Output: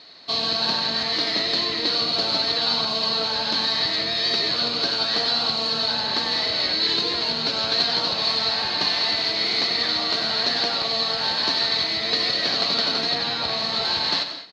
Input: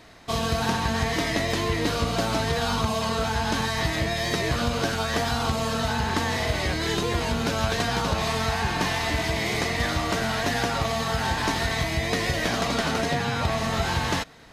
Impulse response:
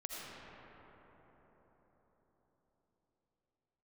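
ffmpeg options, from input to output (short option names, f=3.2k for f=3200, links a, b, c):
-filter_complex "[0:a]highpass=240,asplit=2[a][b];[b]asetrate=29433,aresample=44100,atempo=1.49831,volume=-9dB[c];[a][c]amix=inputs=2:normalize=0,lowpass=f=4.3k:t=q:w=14,asplit=2[d][e];[1:a]atrim=start_sample=2205,atrim=end_sample=6174,adelay=93[f];[e][f]afir=irnorm=-1:irlink=0,volume=-4.5dB[g];[d][g]amix=inputs=2:normalize=0,volume=-4dB"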